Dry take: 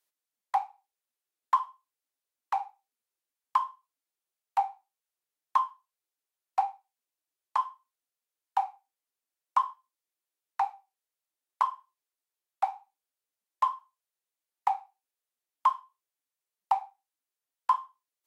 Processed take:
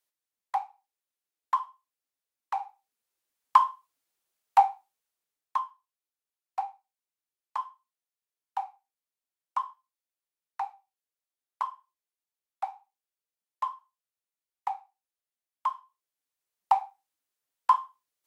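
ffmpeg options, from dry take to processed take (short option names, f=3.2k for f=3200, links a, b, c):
-af "volume=16dB,afade=t=in:st=2.53:d=1.1:silence=0.334965,afade=t=out:st=4.61:d=1:silence=0.237137,afade=t=in:st=15.7:d=1.07:silence=0.375837"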